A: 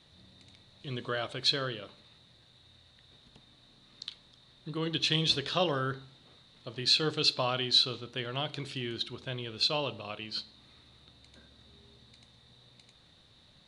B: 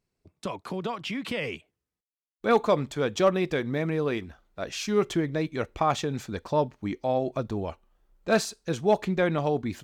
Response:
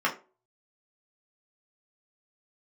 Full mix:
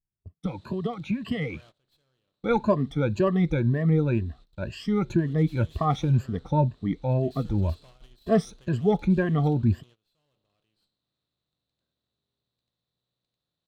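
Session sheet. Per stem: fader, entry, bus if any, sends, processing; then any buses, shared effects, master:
9.64 s -15 dB -> 10.00 s -21.5 dB, 0.45 s, no send, spectral levelling over time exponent 0.6; valve stage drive 30 dB, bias 0.65; auto duck -7 dB, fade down 1.70 s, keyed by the second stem
-9.0 dB, 0.00 s, no send, drifting ripple filter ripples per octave 1.4, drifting +2 Hz, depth 21 dB; tone controls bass +10 dB, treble -8 dB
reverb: none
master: gate -52 dBFS, range -20 dB; bass shelf 290 Hz +8 dB

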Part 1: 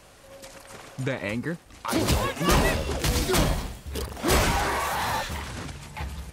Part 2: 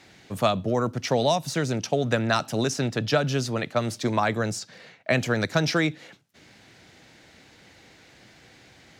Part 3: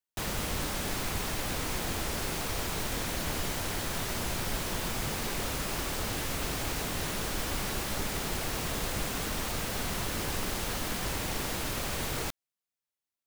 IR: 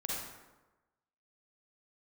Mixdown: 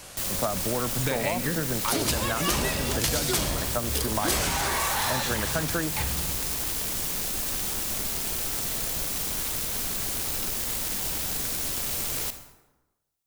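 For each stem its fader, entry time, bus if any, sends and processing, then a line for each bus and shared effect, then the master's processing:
+1.0 dB, 0.00 s, send -9.5 dB, none
-1.5 dB, 0.00 s, no send, elliptic low-pass 1.7 kHz
-4.0 dB, 0.00 s, send -9.5 dB, self-modulated delay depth 0.87 ms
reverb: on, RT60 1.1 s, pre-delay 38 ms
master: treble shelf 3.1 kHz +11.5 dB; compression, threshold -23 dBFS, peak gain reduction 12.5 dB

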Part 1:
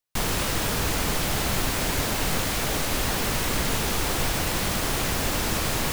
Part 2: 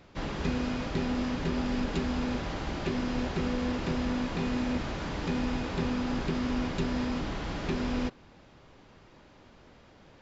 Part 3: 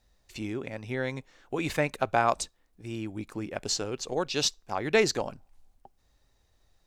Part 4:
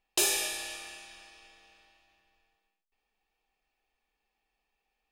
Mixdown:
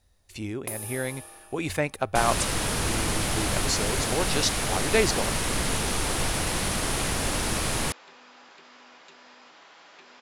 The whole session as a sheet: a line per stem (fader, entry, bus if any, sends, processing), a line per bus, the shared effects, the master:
-1.5 dB, 2.00 s, no send, low-pass 9 kHz 12 dB/octave
-6.0 dB, 2.30 s, no send, high-pass 800 Hz 12 dB/octave; compression 2:1, threshold -46 dBFS, peak gain reduction 6 dB
+0.5 dB, 0.00 s, no send, peaking EQ 89 Hz +14 dB 0.26 oct
+0.5 dB, 0.50 s, no send, high-order bell 4 kHz -14.5 dB 2.4 oct; compression, threshold -38 dBFS, peak gain reduction 11 dB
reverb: none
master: peaking EQ 10 kHz +11.5 dB 0.34 oct

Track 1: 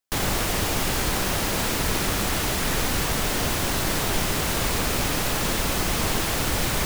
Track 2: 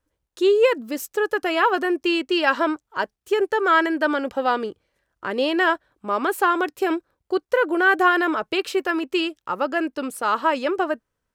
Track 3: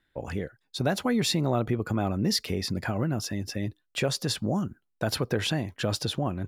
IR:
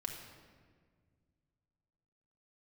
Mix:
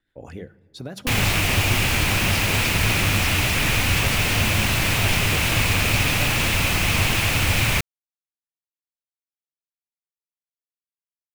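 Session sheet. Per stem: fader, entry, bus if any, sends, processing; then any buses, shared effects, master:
+0.5 dB, 0.95 s, no send, fifteen-band graphic EQ 100 Hz +12 dB, 400 Hz -4 dB, 2.5 kHz +12 dB
mute
-2.0 dB, 0.00 s, send -14.5 dB, hum notches 50/100/150/200 Hz; compression 5:1, threshold -27 dBFS, peak gain reduction 6.5 dB; rotary cabinet horn 7 Hz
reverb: on, RT60 1.8 s, pre-delay 4 ms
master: none

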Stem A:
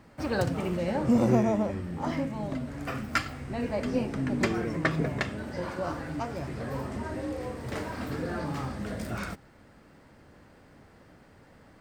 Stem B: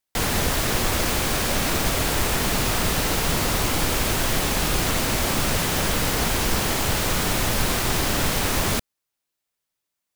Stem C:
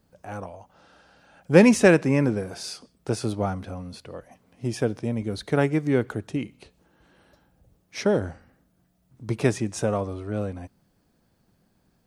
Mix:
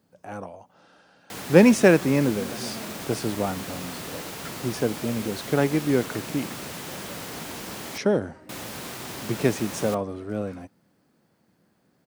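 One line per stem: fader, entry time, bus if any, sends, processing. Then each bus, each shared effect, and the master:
-16.0 dB, 1.30 s, no send, none
-13.0 dB, 1.15 s, muted 7.98–8.49 s, no send, none
-1.0 dB, 0.00 s, no send, none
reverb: none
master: high-pass 160 Hz 12 dB/octave; bass shelf 280 Hz +4 dB

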